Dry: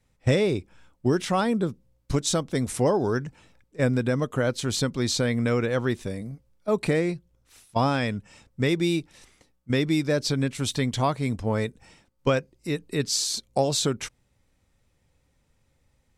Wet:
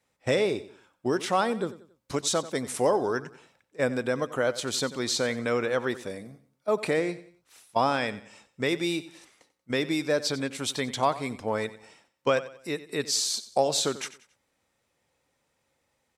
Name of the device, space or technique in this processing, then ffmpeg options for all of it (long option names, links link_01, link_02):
filter by subtraction: -filter_complex "[0:a]aecho=1:1:92|184|276:0.158|0.0586|0.0217,asplit=2[link_01][link_02];[link_02]lowpass=680,volume=-1[link_03];[link_01][link_03]amix=inputs=2:normalize=0,volume=-1dB"